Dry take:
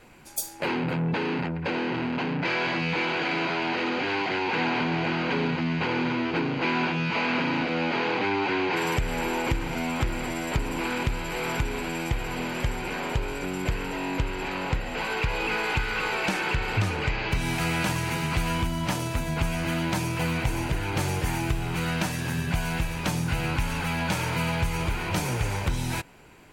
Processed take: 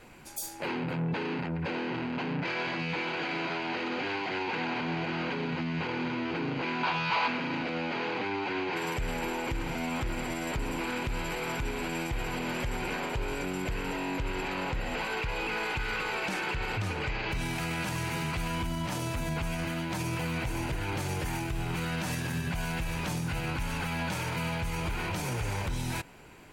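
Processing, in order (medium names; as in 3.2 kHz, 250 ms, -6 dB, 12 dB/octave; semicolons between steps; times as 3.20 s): peak limiter -24 dBFS, peak gain reduction 9.5 dB; 6.83–7.28 s: graphic EQ 250/1000/4000 Hz -10/+10/+7 dB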